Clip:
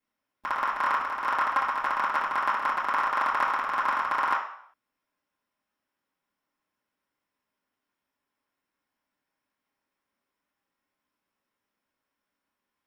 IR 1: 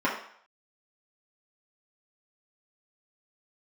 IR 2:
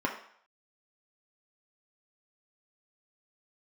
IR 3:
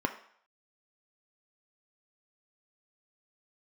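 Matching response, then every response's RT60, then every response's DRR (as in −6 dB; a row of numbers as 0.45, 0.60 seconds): 1; 0.60, 0.60, 0.60 seconds; −7.0, −1.0, 5.0 decibels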